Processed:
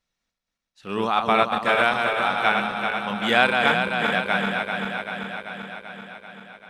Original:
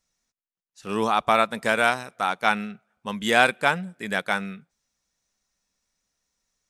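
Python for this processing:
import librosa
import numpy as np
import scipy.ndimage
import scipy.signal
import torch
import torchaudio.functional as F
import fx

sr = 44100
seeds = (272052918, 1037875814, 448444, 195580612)

y = fx.reverse_delay_fb(x, sr, ms=194, feedback_pct=81, wet_db=-4.5)
y = fx.high_shelf_res(y, sr, hz=4800.0, db=-8.0, q=1.5)
y = y * 10.0 ** (-1.0 / 20.0)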